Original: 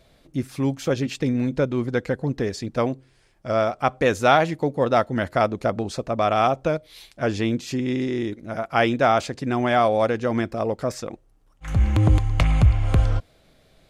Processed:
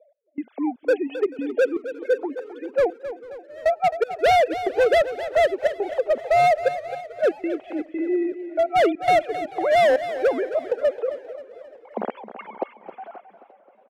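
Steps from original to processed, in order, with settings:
three sine waves on the formant tracks
high-pass filter 250 Hz 24 dB per octave
flat-topped bell 570 Hz +9.5 dB 1.3 octaves
notch filter 1,900 Hz, Q 28
hard clipping −10.5 dBFS, distortion −8 dB
low-pass that shuts in the quiet parts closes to 1,000 Hz, open at −15.5 dBFS
gate pattern "x..xxx.xxx.xx" 119 BPM −24 dB
repeating echo 265 ms, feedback 49%, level −12.5 dB
feedback echo with a swinging delay time 444 ms, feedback 54%, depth 211 cents, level −22.5 dB
level −4 dB

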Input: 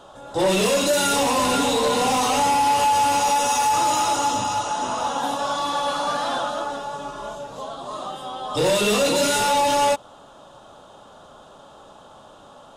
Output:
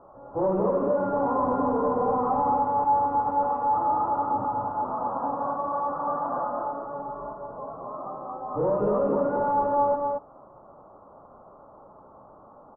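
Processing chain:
elliptic low-pass filter 1,200 Hz, stop band 70 dB
loudspeakers that aren't time-aligned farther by 43 metres −11 dB, 78 metres −4 dB
level −4.5 dB

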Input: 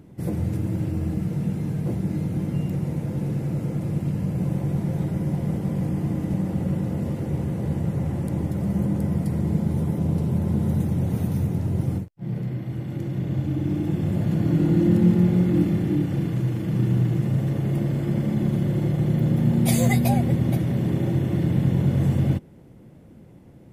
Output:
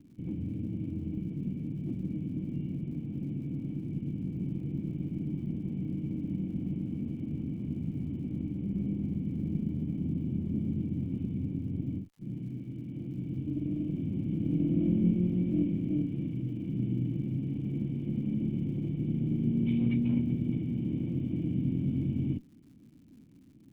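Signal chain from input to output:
lower of the sound and its delayed copy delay 0.74 ms
formant resonators in series i
surface crackle 180 per second −57 dBFS

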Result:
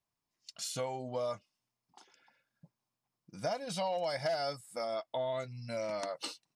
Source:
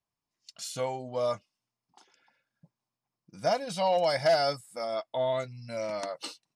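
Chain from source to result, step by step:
downward compressor 3 to 1, threshold −34 dBFS, peak gain reduction 10.5 dB

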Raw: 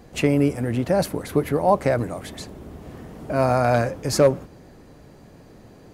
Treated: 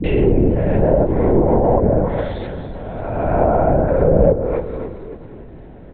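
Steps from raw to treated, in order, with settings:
peak hold with a rise ahead of every peak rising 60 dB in 1.79 s
all-pass dispersion highs, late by 54 ms, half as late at 340 Hz
on a send: echo with shifted repeats 278 ms, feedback 45%, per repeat −49 Hz, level −12 dB
on the sum: treble cut that deepens with the level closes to 540 Hz, closed at −12 dBFS
in parallel at −6.5 dB: soft clipping −16.5 dBFS, distortion −12 dB
on the sum: linear-prediction vocoder at 8 kHz whisper
high-shelf EQ 2,300 Hz −11.5 dB
notch filter 1,200 Hz, Q 8.5
feedback echo with a swinging delay time 112 ms, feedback 73%, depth 177 cents, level −19 dB
level +2 dB

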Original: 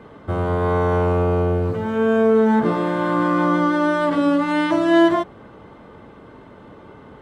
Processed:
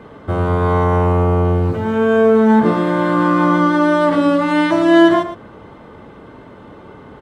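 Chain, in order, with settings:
0:00.84–0:01.45: parametric band 4,100 Hz −4.5 dB 1.2 octaves
single-tap delay 114 ms −11 dB
level +4 dB

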